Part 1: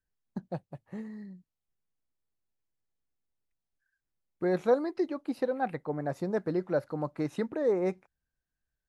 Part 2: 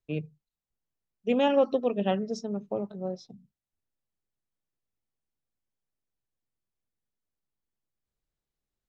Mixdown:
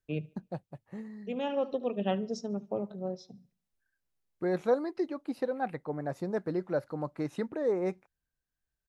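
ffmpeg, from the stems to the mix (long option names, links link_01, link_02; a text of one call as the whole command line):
ffmpeg -i stem1.wav -i stem2.wav -filter_complex "[0:a]volume=-2dB,asplit=2[link_01][link_02];[1:a]volume=-2dB,asplit=2[link_03][link_04];[link_04]volume=-23dB[link_05];[link_02]apad=whole_len=391954[link_06];[link_03][link_06]sidechaincompress=threshold=-49dB:ratio=4:attack=5.9:release=1260[link_07];[link_05]aecho=0:1:73|146|219|292|365:1|0.39|0.152|0.0593|0.0231[link_08];[link_01][link_07][link_08]amix=inputs=3:normalize=0" out.wav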